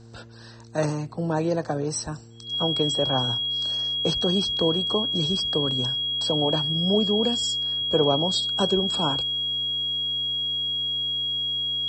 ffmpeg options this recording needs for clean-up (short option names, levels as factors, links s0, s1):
-af "bandreject=f=114.9:t=h:w=4,bandreject=f=229.8:t=h:w=4,bandreject=f=344.7:t=h:w=4,bandreject=f=459.6:t=h:w=4,bandreject=f=3300:w=30"